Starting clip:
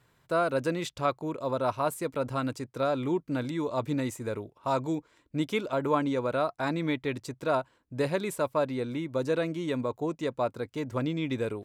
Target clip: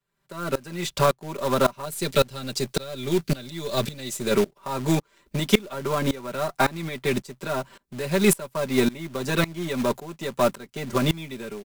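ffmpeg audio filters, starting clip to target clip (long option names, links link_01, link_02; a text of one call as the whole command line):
ffmpeg -i in.wav -filter_complex "[0:a]aeval=exprs='if(lt(val(0),0),0.708*val(0),val(0))':channel_layout=same,acrossover=split=100|320|860[link_01][link_02][link_03][link_04];[link_01]acompressor=threshold=-53dB:ratio=4[link_05];[link_02]acompressor=threshold=-33dB:ratio=4[link_06];[link_03]acompressor=threshold=-40dB:ratio=4[link_07];[link_04]acompressor=threshold=-38dB:ratio=4[link_08];[link_05][link_06][link_07][link_08]amix=inputs=4:normalize=0,asettb=1/sr,asplit=3[link_09][link_10][link_11];[link_09]atrim=end=1.854[link_12];[link_10]atrim=start=1.85:end=4.31,asetpts=PTS-STARTPTS,afade=type=in:duration=0.004:curve=qsin,afade=type=out:start_time=2.456:duration=0.004:curve=qsin,equalizer=frequency=250:width_type=o:width=1:gain=-6,equalizer=frequency=1000:width_type=o:width=1:gain=-10,equalizer=frequency=2000:width_type=o:width=1:gain=-4,equalizer=frequency=4000:width_type=o:width=1:gain=7[link_13];[link_11]atrim=start=4.306[link_14];[link_12][link_13]acrossfade=duration=0.004:curve1=hsin:curve2=qsin[link_15];[link_15][link_14]acrossfade=duration=0.004:curve1=qsin:curve2=hsin,alimiter=level_in=4.5dB:limit=-24dB:level=0:latency=1:release=448,volume=-4.5dB,highshelf=frequency=4000:gain=3,aecho=1:1:5.1:0.85,acrusher=bits=3:mode=log:mix=0:aa=0.000001,dynaudnorm=framelen=120:gausssize=9:maxgain=16.5dB,aeval=exprs='val(0)*pow(10,-23*if(lt(mod(-1.8*n/s,1),2*abs(-1.8)/1000),1-mod(-1.8*n/s,1)/(2*abs(-1.8)/1000),(mod(-1.8*n/s,1)-2*abs(-1.8)/1000)/(1-2*abs(-1.8)/1000))/20)':channel_layout=same,volume=3.5dB" out.wav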